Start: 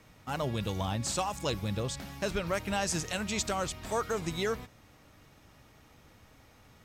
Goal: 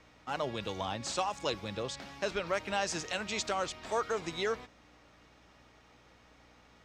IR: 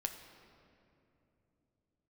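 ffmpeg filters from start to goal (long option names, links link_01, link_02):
-filter_complex "[0:a]aeval=exprs='val(0)+0.00178*(sin(2*PI*60*n/s)+sin(2*PI*2*60*n/s)/2+sin(2*PI*3*60*n/s)/3+sin(2*PI*4*60*n/s)/4+sin(2*PI*5*60*n/s)/5)':channel_layout=same,acrossover=split=280 7000:gain=0.251 1 0.0891[link_01][link_02][link_03];[link_01][link_02][link_03]amix=inputs=3:normalize=0"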